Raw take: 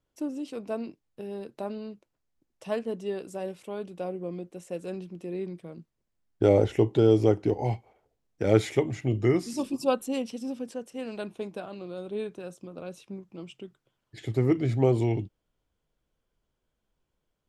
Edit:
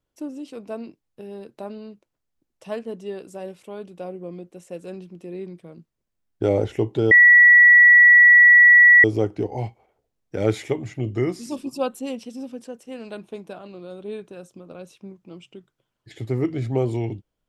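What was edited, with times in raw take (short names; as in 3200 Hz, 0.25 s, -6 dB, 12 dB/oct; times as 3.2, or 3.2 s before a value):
7.11 add tone 1940 Hz -7.5 dBFS 1.93 s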